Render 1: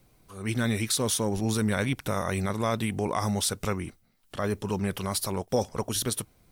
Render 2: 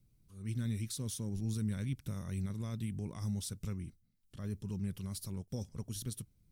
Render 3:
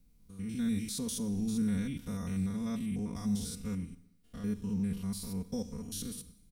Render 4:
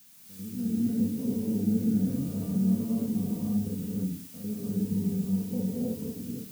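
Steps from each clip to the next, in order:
drawn EQ curve 160 Hz 0 dB, 740 Hz −22 dB, 5,600 Hz −9 dB; level −5.5 dB
spectrum averaged block by block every 100 ms; comb filter 4.2 ms, depth 88%; four-comb reverb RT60 0.83 s, combs from 31 ms, DRR 14.5 dB; level +4 dB
flat-topped band-pass 280 Hz, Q 0.56; background noise blue −56 dBFS; reverb whose tail is shaped and stops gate 340 ms rising, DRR −6.5 dB

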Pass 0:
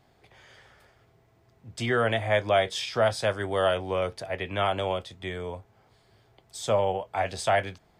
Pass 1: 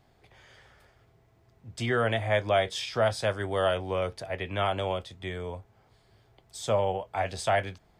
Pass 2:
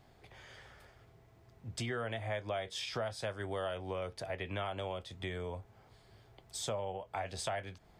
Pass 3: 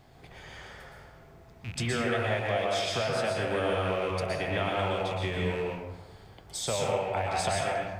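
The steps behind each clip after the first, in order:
low-shelf EQ 75 Hz +7.5 dB; level −2 dB
downward compressor 4 to 1, threshold −38 dBFS, peak gain reduction 15 dB; level +1 dB
loose part that buzzes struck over −48 dBFS, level −37 dBFS; convolution reverb RT60 1.2 s, pre-delay 107 ms, DRR −2 dB; level +5.5 dB

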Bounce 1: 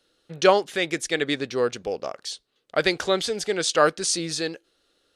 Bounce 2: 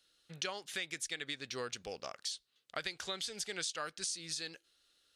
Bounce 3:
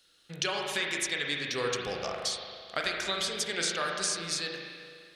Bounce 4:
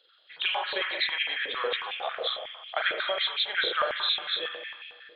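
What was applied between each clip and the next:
guitar amp tone stack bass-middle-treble 5-5-5; downward compressor 12 to 1, threshold −40 dBFS, peak gain reduction 14 dB; level +4.5 dB
spring reverb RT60 2.1 s, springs 35/41 ms, chirp 45 ms, DRR −0.5 dB; level +7 dB
hearing-aid frequency compression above 3,100 Hz 4 to 1; high-pass on a step sequencer 11 Hz 480–2,500 Hz; level −1.5 dB

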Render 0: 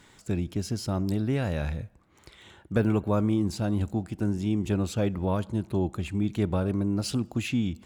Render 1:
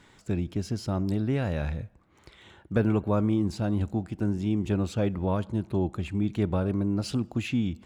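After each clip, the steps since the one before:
high-shelf EQ 6,300 Hz −9.5 dB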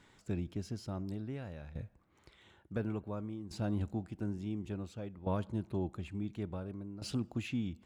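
shaped tremolo saw down 0.57 Hz, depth 80%
level −6.5 dB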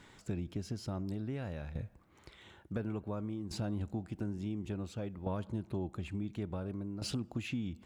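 downward compressor 3 to 1, threshold −41 dBFS, peak gain reduction 9 dB
level +5.5 dB

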